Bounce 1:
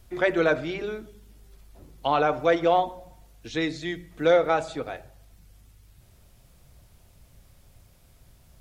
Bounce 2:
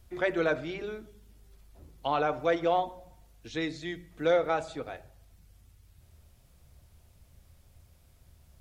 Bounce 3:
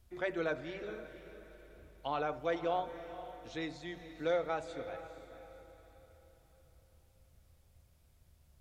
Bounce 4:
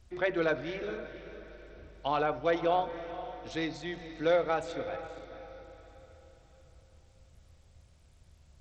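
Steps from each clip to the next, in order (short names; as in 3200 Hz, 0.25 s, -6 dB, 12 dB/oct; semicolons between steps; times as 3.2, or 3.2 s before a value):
bell 78 Hz +11 dB 0.27 oct; gain -5.5 dB
diffused feedback echo 0.483 s, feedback 41%, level -12 dB; gain -7.5 dB
gain +6 dB; SBC 64 kbps 32000 Hz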